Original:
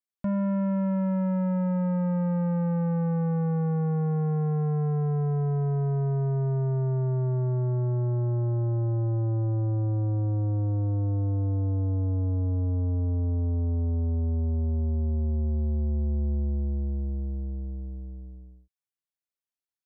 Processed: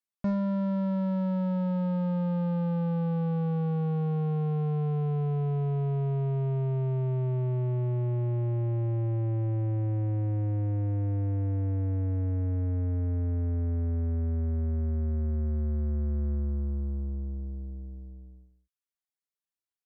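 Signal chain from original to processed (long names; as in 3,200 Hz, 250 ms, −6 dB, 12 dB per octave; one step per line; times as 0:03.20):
reverb reduction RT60 0.66 s
harmonic generator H 2 −22 dB, 4 −26 dB, 7 −31 dB, 8 −38 dB, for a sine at −24.5 dBFS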